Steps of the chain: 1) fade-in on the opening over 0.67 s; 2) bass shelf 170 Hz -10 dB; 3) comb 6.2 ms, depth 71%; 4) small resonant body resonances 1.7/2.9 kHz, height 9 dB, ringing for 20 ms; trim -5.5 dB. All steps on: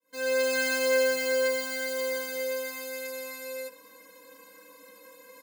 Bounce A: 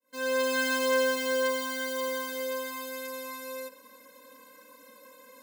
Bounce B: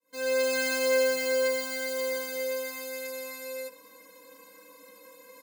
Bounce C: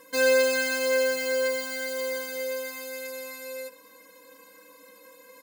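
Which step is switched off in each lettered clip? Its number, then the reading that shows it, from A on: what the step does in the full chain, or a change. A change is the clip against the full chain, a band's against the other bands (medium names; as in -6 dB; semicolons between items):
3, 1 kHz band +8.0 dB; 4, 2 kHz band -2.0 dB; 1, crest factor change +2.0 dB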